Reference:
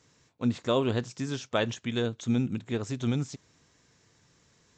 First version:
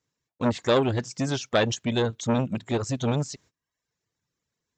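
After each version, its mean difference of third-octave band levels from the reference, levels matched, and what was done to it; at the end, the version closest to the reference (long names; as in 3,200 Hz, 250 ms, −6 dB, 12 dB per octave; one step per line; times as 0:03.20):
3.5 dB: reverb reduction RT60 0.96 s
in parallel at −2 dB: output level in coarse steps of 21 dB
on the sum: noise gate −59 dBFS, range −25 dB
saturating transformer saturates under 990 Hz
level +7 dB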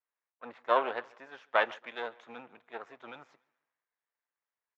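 10.5 dB: gain on one half-wave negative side −12 dB
flat-topped band-pass 1,200 Hz, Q 0.81
repeating echo 143 ms, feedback 55%, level −22 dB
multiband upward and downward expander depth 70%
level +2.5 dB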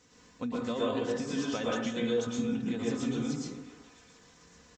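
8.0 dB: comb filter 4 ms, depth 56%
downward compressor, threshold −34 dBFS, peak gain reduction 14 dB
on a send: echo through a band-pass that steps 277 ms, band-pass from 390 Hz, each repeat 1.4 octaves, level −9.5 dB
on the sum: dense smooth reverb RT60 0.72 s, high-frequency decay 0.45×, pre-delay 100 ms, DRR −5 dB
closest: first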